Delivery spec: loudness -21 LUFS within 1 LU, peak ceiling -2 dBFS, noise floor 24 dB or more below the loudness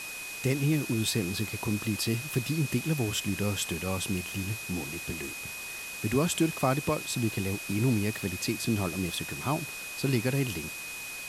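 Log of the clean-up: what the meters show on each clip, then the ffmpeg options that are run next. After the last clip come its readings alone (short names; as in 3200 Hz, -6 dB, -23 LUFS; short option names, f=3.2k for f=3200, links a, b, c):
steady tone 2500 Hz; tone level -39 dBFS; noise floor -40 dBFS; noise floor target -54 dBFS; loudness -30.0 LUFS; peak -12.0 dBFS; loudness target -21.0 LUFS
-> -af "bandreject=f=2.5k:w=30"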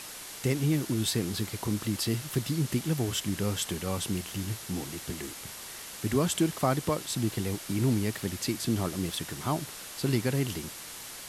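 steady tone none; noise floor -43 dBFS; noise floor target -55 dBFS
-> -af "afftdn=nr=12:nf=-43"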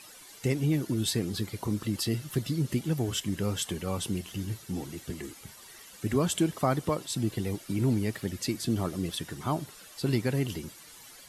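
noise floor -51 dBFS; noise floor target -55 dBFS
-> -af "afftdn=nr=6:nf=-51"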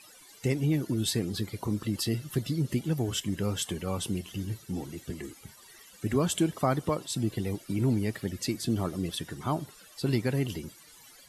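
noise floor -54 dBFS; noise floor target -55 dBFS
-> -af "afftdn=nr=6:nf=-54"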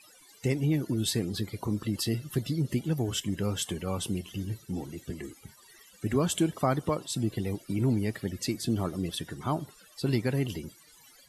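noise floor -57 dBFS; loudness -31.0 LUFS; peak -13.0 dBFS; loudness target -21.0 LUFS
-> -af "volume=10dB"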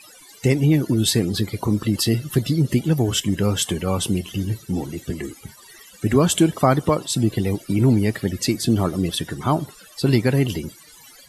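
loudness -21.0 LUFS; peak -3.0 dBFS; noise floor -47 dBFS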